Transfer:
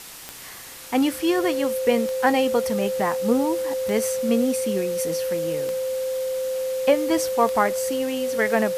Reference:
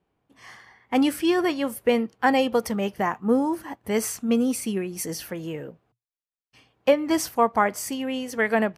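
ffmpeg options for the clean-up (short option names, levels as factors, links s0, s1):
-af "adeclick=t=4,bandreject=f=520:w=30,afftdn=nr=30:nf=-39"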